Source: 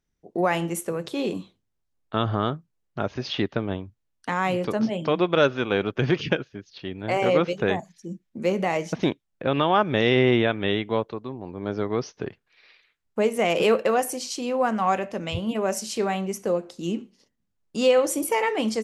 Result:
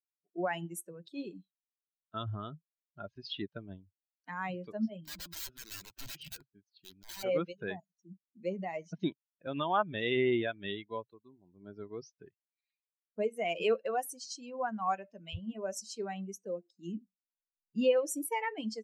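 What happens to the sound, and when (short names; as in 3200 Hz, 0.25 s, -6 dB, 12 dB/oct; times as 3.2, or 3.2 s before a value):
5.05–7.23 wrapped overs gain 23 dB
16.95–17.97 tone controls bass +8 dB, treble -9 dB
whole clip: per-bin expansion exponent 2; bell 130 Hz -8.5 dB 0.25 oct; gain -6 dB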